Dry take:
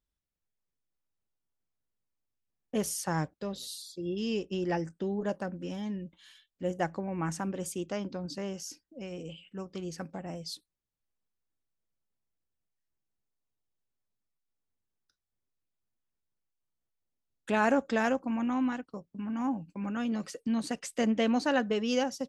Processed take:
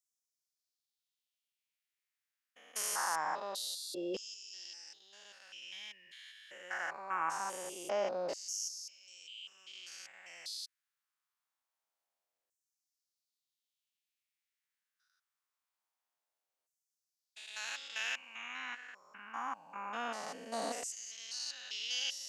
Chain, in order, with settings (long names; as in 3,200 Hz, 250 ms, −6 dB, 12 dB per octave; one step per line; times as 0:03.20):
spectrum averaged block by block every 200 ms
auto-filter high-pass saw down 0.24 Hz 550–6,900 Hz
level +4 dB